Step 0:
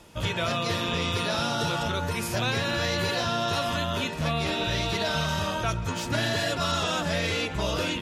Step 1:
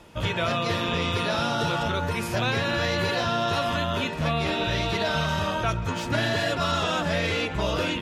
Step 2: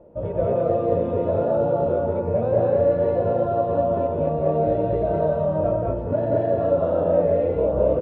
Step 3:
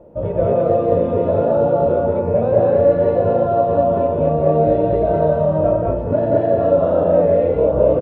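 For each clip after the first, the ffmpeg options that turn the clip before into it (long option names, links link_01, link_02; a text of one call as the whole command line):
ffmpeg -i in.wav -af "bass=frequency=250:gain=-1,treble=frequency=4000:gain=-7,volume=2.5dB" out.wav
ffmpeg -i in.wav -filter_complex "[0:a]lowpass=frequency=550:width_type=q:width=4.9,asplit=2[link_01][link_02];[link_02]aecho=0:1:96.21|183.7|215.7:0.355|0.794|0.891[link_03];[link_01][link_03]amix=inputs=2:normalize=0,volume=-3.5dB" out.wav
ffmpeg -i in.wav -filter_complex "[0:a]asplit=2[link_01][link_02];[link_02]adelay=39,volume=-12dB[link_03];[link_01][link_03]amix=inputs=2:normalize=0,volume=5dB" out.wav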